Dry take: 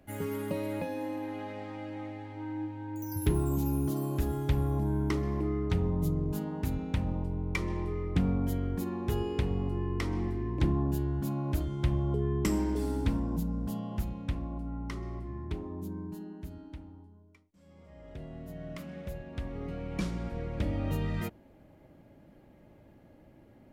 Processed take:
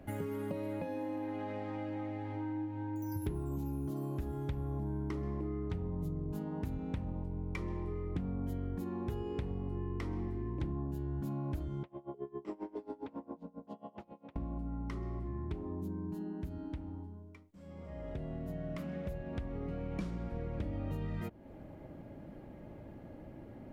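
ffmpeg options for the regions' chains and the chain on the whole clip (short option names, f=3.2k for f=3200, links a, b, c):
-filter_complex "[0:a]asettb=1/sr,asplit=3[a][b][c];[a]atrim=end=11.834[d];[b]atrim=start=11.83:end=14.36,asetpts=PTS-STARTPTS,afade=t=in:d=0.004:c=qsin,afade=t=out:st=2.526:d=0.004:c=qsin,highpass=550,lowpass=2.1k,equalizer=f=1.6k:w=1:g=-10.5,aeval=exprs='val(0)*pow(10,-25*(0.5-0.5*cos(2*PI*7.4*n/s))/20)':c=same[e];[c]atrim=start=14.356[f];[d][e]acrossfade=d=0.004:c1=hsin:c2=qsin[g];[g][f]acrossfade=d=0.004:c1=qsin:c2=hsin,highshelf=f=2.3k:g=-9,acompressor=threshold=-45dB:ratio=4,volume=7.5dB"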